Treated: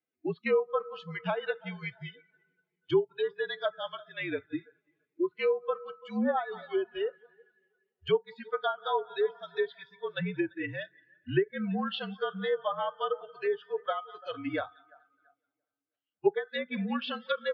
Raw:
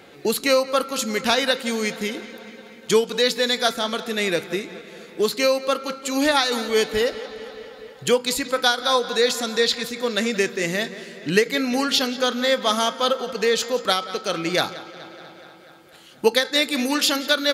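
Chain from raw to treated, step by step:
spectral dynamics exaggerated over time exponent 1.5
single-sideband voice off tune −52 Hz 180–3,500 Hz
treble cut that deepens with the level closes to 1,200 Hz, closed at −19 dBFS
on a send: tape delay 339 ms, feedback 41%, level −19.5 dB, low-pass 2,300 Hz
on the sum: noise reduction from a noise print of the clip's start 21 dB
level −5.5 dB

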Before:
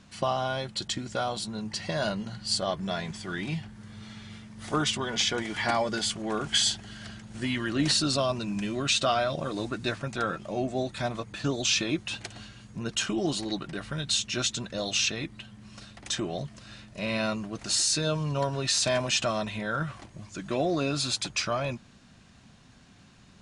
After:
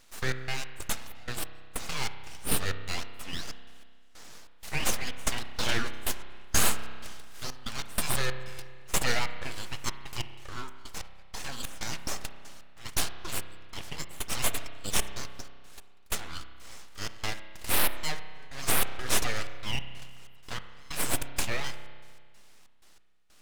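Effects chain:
high-pass filter 880 Hz 12 dB per octave
full-wave rectification
gate pattern "xx.x.xx.x..xx.x" 94 BPM −24 dB
spring reverb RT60 1.8 s, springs 31 ms, chirp 45 ms, DRR 9.5 dB
level +4 dB

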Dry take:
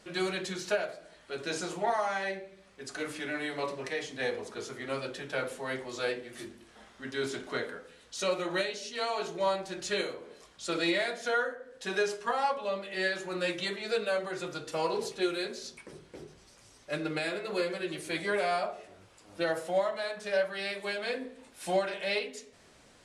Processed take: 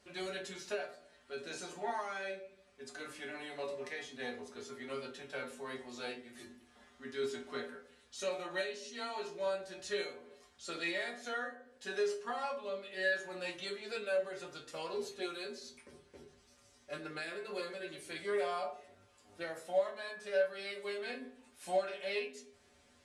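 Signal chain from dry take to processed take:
tuned comb filter 81 Hz, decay 0.19 s, harmonics odd, mix 90%
level +1 dB

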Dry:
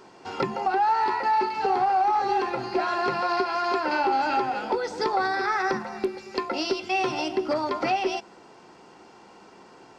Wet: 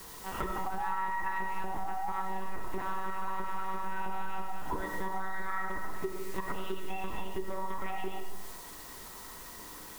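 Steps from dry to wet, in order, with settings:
one-pitch LPC vocoder at 8 kHz 190 Hz
parametric band 480 Hz −14 dB 0.24 octaves
in parallel at −7.5 dB: bit-depth reduction 6 bits, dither triangular
on the sum: tuned comb filter 100 Hz, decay 1.3 s, harmonics odd, mix 70%
hollow resonant body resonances 460/990/1,900 Hz, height 10 dB, ringing for 25 ms
on a send at −5 dB: convolution reverb RT60 0.60 s, pre-delay 35 ms
on the sum: downward compressor 5 to 1, threshold −33 dBFS, peak gain reduction 13 dB
graphic EQ with 15 bands 100 Hz −9 dB, 630 Hz −7 dB, 2,500 Hz −5 dB
level +4.5 dB

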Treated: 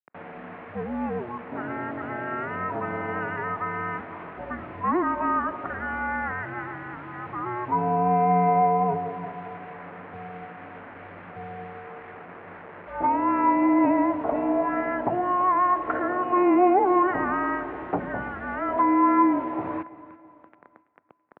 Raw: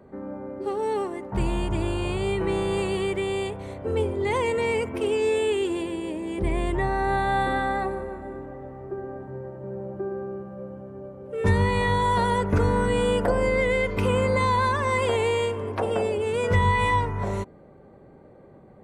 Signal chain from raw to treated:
pitch shifter −4 semitones
parametric band 1,300 Hz +10 dB 0.67 octaves
in parallel at −2.5 dB: brickwall limiter −19 dBFS, peak gain reduction 10.5 dB
on the sum: speed change −12%
bit reduction 6 bits
single-sideband voice off tune −370 Hz 320–2,500 Hz
high-pass filter 230 Hz 12 dB per octave
repeating echo 331 ms, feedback 43%, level −18.5 dB
on a send at −22 dB: convolution reverb RT60 3.1 s, pre-delay 14 ms

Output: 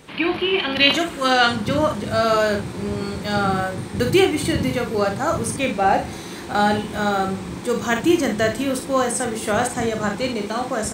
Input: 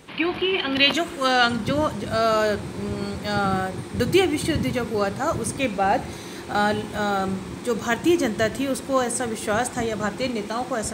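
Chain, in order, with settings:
ambience of single reflections 39 ms −7.5 dB, 57 ms −9 dB
level +1.5 dB

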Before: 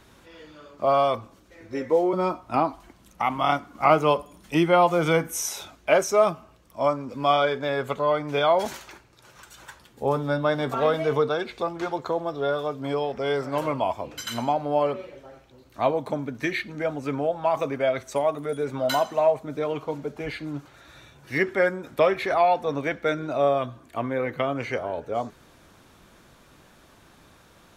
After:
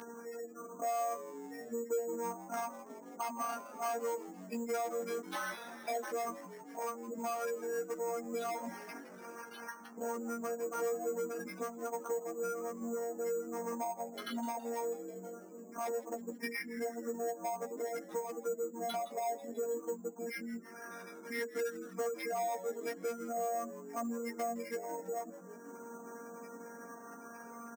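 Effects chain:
adaptive Wiener filter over 9 samples
gate on every frequency bin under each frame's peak −15 dB strong
parametric band 8,600 Hz +11.5 dB 0.73 octaves
in parallel at −1 dB: downward compressor, threshold −35 dBFS, peak gain reduction 19.5 dB
on the sum: phases set to zero 233 Hz
soft clipping −20.5 dBFS, distortion −11 dB
multi-voice chorus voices 4, 0.12 Hz, delay 13 ms, depth 2.3 ms
on a send: echo with shifted repeats 163 ms, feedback 63%, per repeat −140 Hz, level −16 dB
on the sum: bad sample-rate conversion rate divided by 6×, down none, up hold
linear-phase brick-wall high-pass 170 Hz
multiband upward and downward compressor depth 70%
level −7 dB

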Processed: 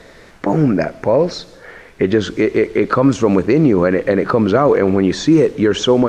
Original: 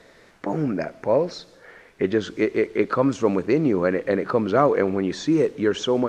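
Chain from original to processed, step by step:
low-shelf EQ 100 Hz +8.5 dB
brickwall limiter −12.5 dBFS, peak gain reduction 7 dB
level +9 dB

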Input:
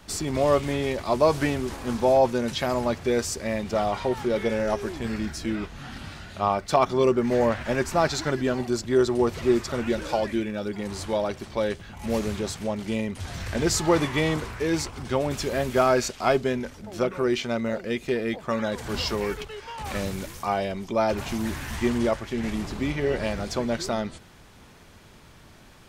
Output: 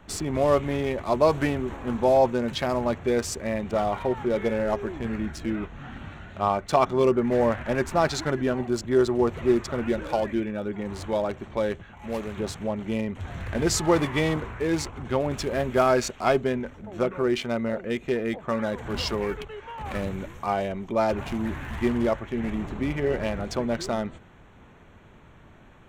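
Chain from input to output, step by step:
adaptive Wiener filter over 9 samples
0:11.83–0:12.37: low-shelf EQ 490 Hz −7.5 dB

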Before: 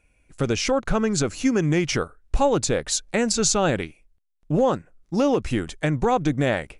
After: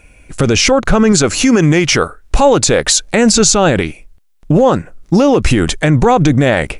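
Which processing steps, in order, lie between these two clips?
0:01.12–0:03.12: low-shelf EQ 350 Hz −5.5 dB
boost into a limiter +20.5 dB
level −1 dB

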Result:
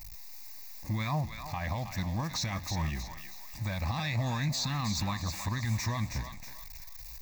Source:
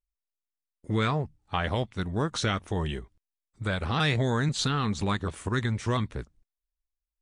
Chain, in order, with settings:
converter with a step at zero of −38.5 dBFS
high-shelf EQ 4,600 Hz +8.5 dB
brickwall limiter −21.5 dBFS, peak gain reduction 9 dB
phaser with its sweep stopped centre 2,100 Hz, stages 8
feedback echo with a high-pass in the loop 319 ms, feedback 41%, high-pass 780 Hz, level −6.5 dB

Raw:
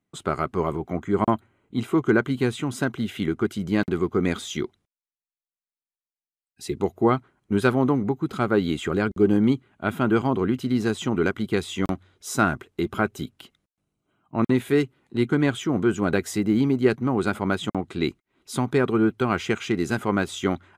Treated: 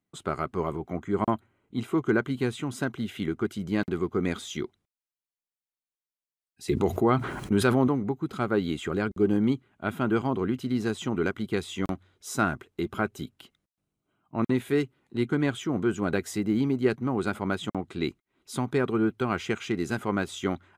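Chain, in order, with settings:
0:06.68–0:07.88: envelope flattener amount 70%
level −4.5 dB

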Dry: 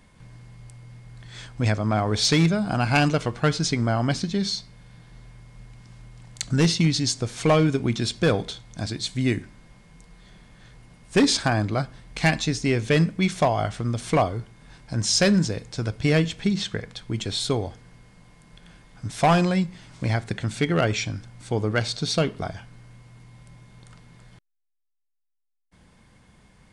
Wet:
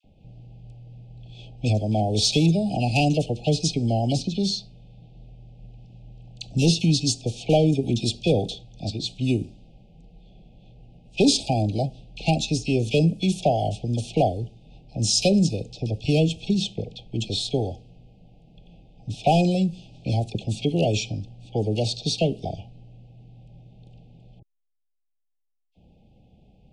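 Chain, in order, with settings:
Chebyshev band-stop filter 810–2,500 Hz, order 5
all-pass dispersion lows, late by 42 ms, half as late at 1,200 Hz
low-pass that shuts in the quiet parts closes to 2,100 Hz, open at −19 dBFS
level +1 dB

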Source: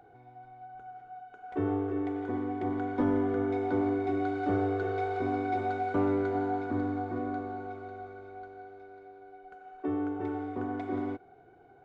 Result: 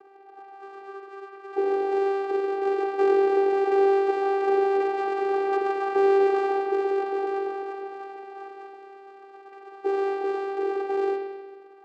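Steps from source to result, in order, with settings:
sub-harmonics by changed cycles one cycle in 3, inverted
spring reverb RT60 1.3 s, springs 45 ms, chirp 50 ms, DRR 4 dB
channel vocoder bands 8, saw 393 Hz
level +6.5 dB

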